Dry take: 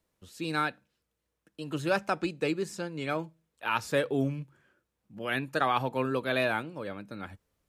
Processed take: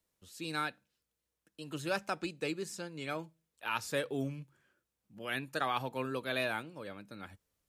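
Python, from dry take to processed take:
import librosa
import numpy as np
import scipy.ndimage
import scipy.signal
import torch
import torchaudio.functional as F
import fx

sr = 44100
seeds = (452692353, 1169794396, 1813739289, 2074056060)

y = fx.high_shelf(x, sr, hz=3000.0, db=8.0)
y = F.gain(torch.from_numpy(y), -7.5).numpy()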